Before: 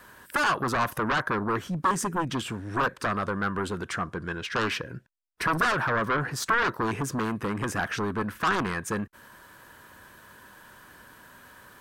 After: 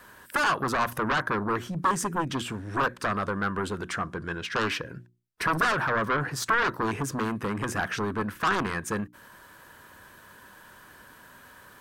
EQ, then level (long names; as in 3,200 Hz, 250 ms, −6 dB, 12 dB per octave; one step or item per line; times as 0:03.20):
mains-hum notches 60/120/180/240/300/360 Hz
0.0 dB